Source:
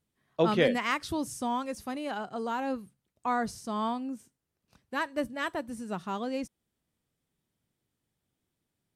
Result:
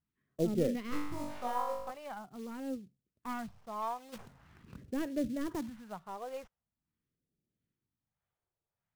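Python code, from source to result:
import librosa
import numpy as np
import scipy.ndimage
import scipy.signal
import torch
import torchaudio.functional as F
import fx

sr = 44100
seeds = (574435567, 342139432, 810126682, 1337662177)

p1 = fx.tracing_dist(x, sr, depth_ms=0.32)
p2 = fx.filter_lfo_lowpass(p1, sr, shape='sine', hz=1.6, low_hz=720.0, high_hz=1600.0, q=0.74)
p3 = fx.dynamic_eq(p2, sr, hz=1800.0, q=1.1, threshold_db=-49.0, ratio=4.0, max_db=-7)
p4 = fx.quant_float(p3, sr, bits=2)
p5 = p3 + F.gain(torch.from_numpy(p4), -5.0).numpy()
p6 = fx.low_shelf(p5, sr, hz=210.0, db=-8.5)
p7 = fx.room_flutter(p6, sr, wall_m=3.5, rt60_s=0.8, at=(0.91, 1.9), fade=0.02)
p8 = fx.phaser_stages(p7, sr, stages=2, low_hz=240.0, high_hz=1000.0, hz=0.44, feedback_pct=20)
p9 = fx.env_flatten(p8, sr, amount_pct=50, at=(4.12, 5.68), fade=0.02)
y = F.gain(torch.from_numpy(p9), -3.0).numpy()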